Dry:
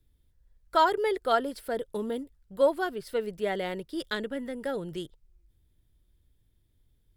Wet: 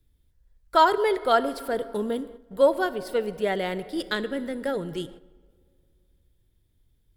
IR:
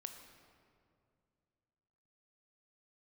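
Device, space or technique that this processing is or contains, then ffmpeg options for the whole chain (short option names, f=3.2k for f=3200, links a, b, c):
keyed gated reverb: -filter_complex "[0:a]asplit=3[a][b][c];[1:a]atrim=start_sample=2205[d];[b][d]afir=irnorm=-1:irlink=0[e];[c]apad=whole_len=316128[f];[e][f]sidechaingate=range=-10dB:threshold=-51dB:ratio=16:detection=peak,volume=0.5dB[g];[a][g]amix=inputs=2:normalize=0"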